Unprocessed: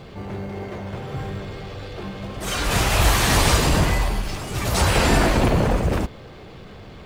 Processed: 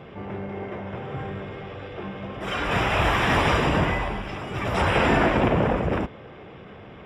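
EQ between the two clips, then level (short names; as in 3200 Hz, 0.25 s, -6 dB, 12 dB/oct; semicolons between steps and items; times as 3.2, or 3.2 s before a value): polynomial smoothing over 25 samples; HPF 150 Hz 6 dB/oct; 0.0 dB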